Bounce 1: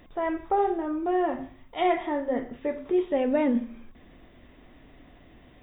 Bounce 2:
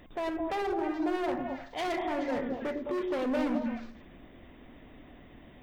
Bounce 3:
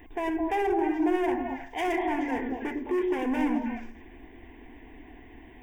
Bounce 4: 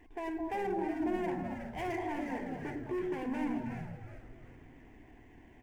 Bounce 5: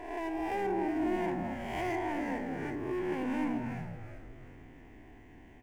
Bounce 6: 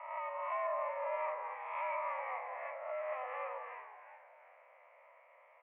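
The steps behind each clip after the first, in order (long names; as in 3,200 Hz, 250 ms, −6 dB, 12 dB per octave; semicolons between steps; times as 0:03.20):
harmonic and percussive parts rebalanced percussive +4 dB; hard clipping −27.5 dBFS, distortion −7 dB; echo through a band-pass that steps 106 ms, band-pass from 270 Hz, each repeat 1.4 octaves, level 0 dB; level −2.5 dB
phaser with its sweep stopped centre 850 Hz, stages 8; level +6 dB
running median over 9 samples; on a send: echo with shifted repeats 370 ms, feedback 40%, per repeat −130 Hz, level −9 dB; on the sum: level −8.5 dB
peak hold with a rise ahead of every peak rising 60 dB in 1.03 s
variable-slope delta modulation 64 kbit/s; single-sideband voice off tune +250 Hz 380–2,100 Hz; level −2 dB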